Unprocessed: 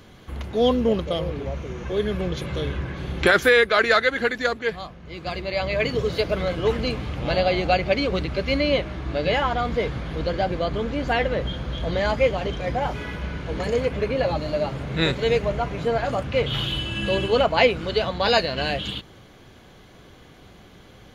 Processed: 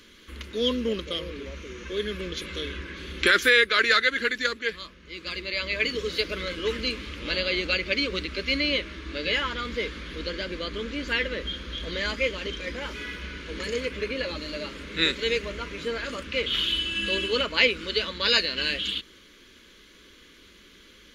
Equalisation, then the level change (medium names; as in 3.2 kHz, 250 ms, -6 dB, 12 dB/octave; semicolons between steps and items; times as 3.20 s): tilt shelf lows -5.5 dB, about 1.1 kHz; treble shelf 7.6 kHz -7 dB; static phaser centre 310 Hz, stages 4; 0.0 dB